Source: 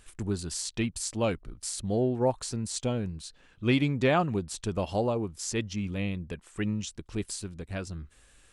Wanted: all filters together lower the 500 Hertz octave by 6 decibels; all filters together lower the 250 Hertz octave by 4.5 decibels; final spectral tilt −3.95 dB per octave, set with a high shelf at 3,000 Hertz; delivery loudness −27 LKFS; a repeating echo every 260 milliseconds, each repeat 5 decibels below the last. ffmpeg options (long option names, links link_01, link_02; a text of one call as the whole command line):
ffmpeg -i in.wav -af "equalizer=frequency=250:width_type=o:gain=-4,equalizer=frequency=500:width_type=o:gain=-6.5,highshelf=frequency=3000:gain=3,aecho=1:1:260|520|780|1040|1300|1560|1820:0.562|0.315|0.176|0.0988|0.0553|0.031|0.0173,volume=4dB" out.wav